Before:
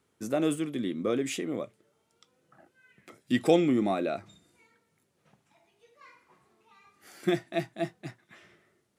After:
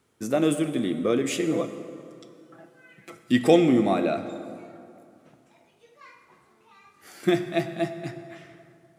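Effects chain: 1.39–3.17 comb 6 ms, depth 85%; plate-style reverb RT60 2.6 s, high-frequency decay 0.6×, DRR 8.5 dB; gain +4.5 dB

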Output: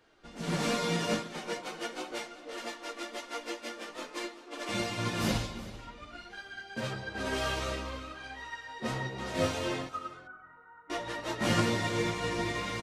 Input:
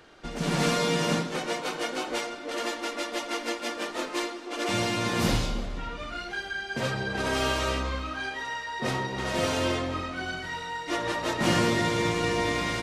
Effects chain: chorus voices 6, 0.46 Hz, delay 14 ms, depth 5 ms; 9.89–10.9 ladder low-pass 1400 Hz, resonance 80%; echo 0.383 s -13 dB; upward expander 1.5:1, over -40 dBFS

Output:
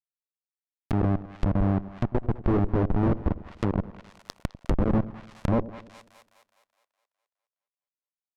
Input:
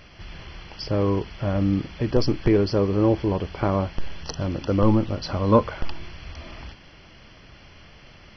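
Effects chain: Schmitt trigger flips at -17 dBFS; split-band echo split 640 Hz, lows 97 ms, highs 0.208 s, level -16 dB; treble ducked by the level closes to 1000 Hz, closed at -27.5 dBFS; gain +3.5 dB

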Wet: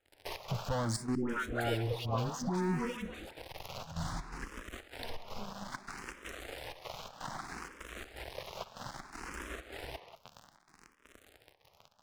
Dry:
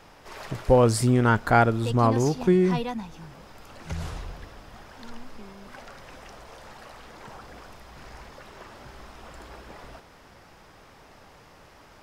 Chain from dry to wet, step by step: low shelf 100 Hz -2.5 dB; de-hum 218.6 Hz, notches 3; sample leveller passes 5; compressor 2.5:1, threshold -34 dBFS, peak gain reduction 16.5 dB; step gate ".xx.xxxx" 125 bpm -12 dB; 1.15–3.31 dispersion highs, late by 0.141 s, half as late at 770 Hz; speakerphone echo 0.19 s, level -8 dB; endless phaser +0.62 Hz; gain -4 dB

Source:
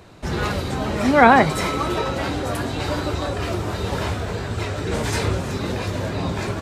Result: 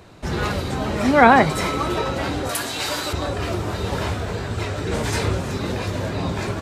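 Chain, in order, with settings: 2.49–3.13 tilt +3.5 dB/oct

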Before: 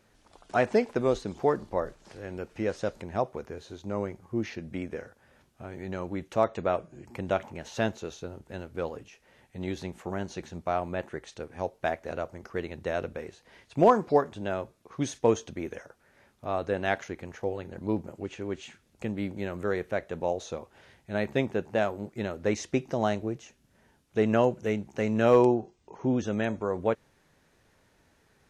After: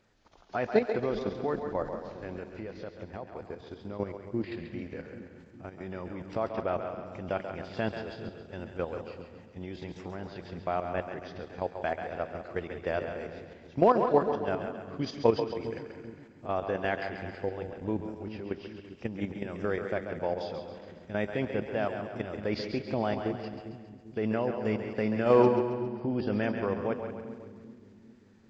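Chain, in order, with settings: nonlinear frequency compression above 2800 Hz 1.5:1; 2.28–3.99 compressor 5:1, threshold -34 dBFS, peak gain reduction 12 dB; on a send: analogue delay 0.178 s, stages 4096, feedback 43%, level -11.5 dB; on the sum: level quantiser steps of 10 dB; split-band echo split 310 Hz, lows 0.397 s, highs 0.136 s, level -8 dB; gain +1 dB

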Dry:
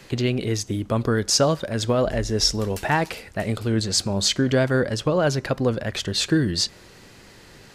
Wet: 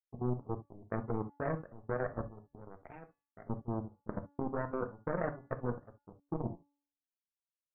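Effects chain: spectral gate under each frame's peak -20 dB strong; chorus 0.34 Hz, delay 16.5 ms, depth 2.5 ms; in parallel at -4.5 dB: hard clip -19 dBFS, distortion -16 dB; on the sum: steep low-pass 860 Hz 36 dB/oct; power-law curve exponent 3; level quantiser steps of 17 dB; de-hum 285.7 Hz, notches 28; on a send at -8.5 dB: reverb, pre-delay 3 ms

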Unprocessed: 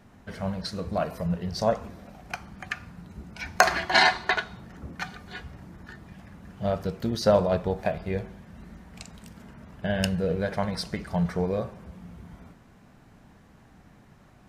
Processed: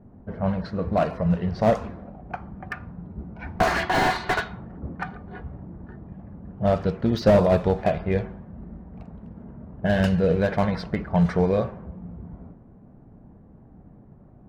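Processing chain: low-pass opened by the level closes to 510 Hz, open at -19.5 dBFS; slew limiter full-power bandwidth 65 Hz; gain +6 dB

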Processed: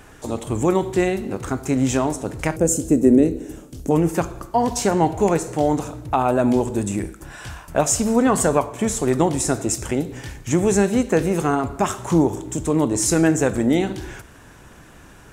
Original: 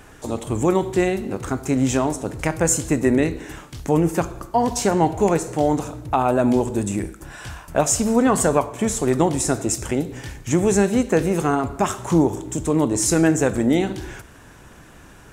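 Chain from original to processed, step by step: 2.56–3.91 ten-band EQ 125 Hz -4 dB, 250 Hz +6 dB, 500 Hz +4 dB, 1000 Hz -11 dB, 2000 Hz -11 dB, 4000 Hz -7 dB

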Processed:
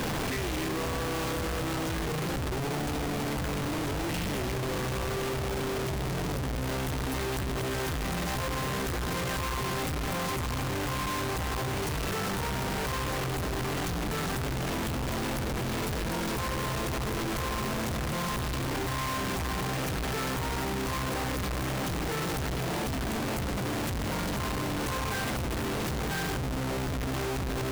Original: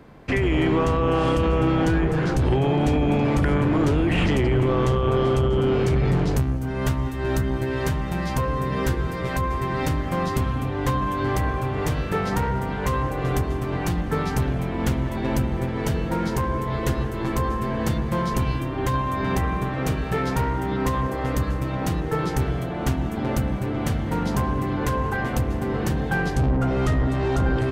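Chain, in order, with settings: infinite clipping; gain -8.5 dB

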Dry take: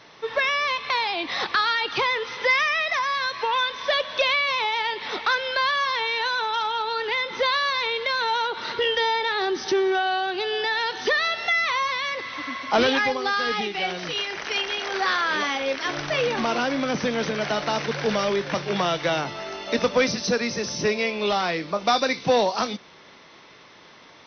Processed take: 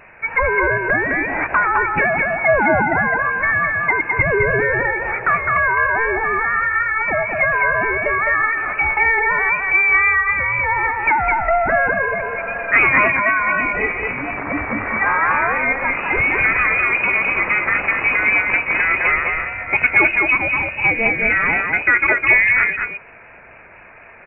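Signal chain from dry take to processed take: echo 0.209 s -3.5 dB; inverted band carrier 2700 Hz; vibrato 4 Hz 30 cents; gain +6 dB

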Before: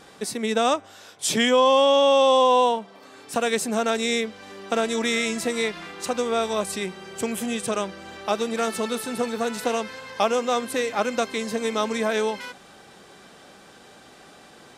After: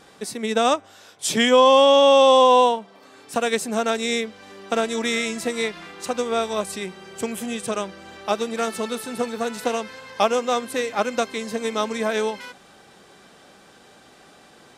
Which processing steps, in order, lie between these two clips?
upward expander 1.5:1, over -27 dBFS; gain +4 dB

